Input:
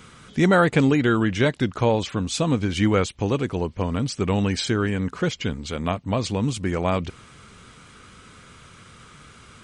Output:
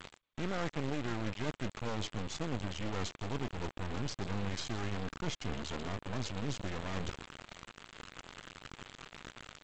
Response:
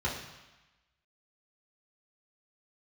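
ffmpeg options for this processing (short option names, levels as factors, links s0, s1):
-filter_complex "[0:a]areverse,acompressor=threshold=0.0251:ratio=12,areverse,adynamicequalizer=threshold=0.00158:dfrequency=4800:dqfactor=2.4:tfrequency=4800:tqfactor=2.4:attack=5:release=100:ratio=0.375:range=2.5:mode=cutabove:tftype=bell,bandreject=f=2300:w=19,asplit=5[s0][s1][s2][s3][s4];[s1]adelay=125,afreqshift=-120,volume=0.15[s5];[s2]adelay=250,afreqshift=-240,volume=0.0716[s6];[s3]adelay=375,afreqshift=-360,volume=0.0343[s7];[s4]adelay=500,afreqshift=-480,volume=0.0166[s8];[s0][s5][s6][s7][s8]amix=inputs=5:normalize=0,acrusher=bits=4:dc=4:mix=0:aa=0.000001,volume=1.26" -ar 16000 -c:a g722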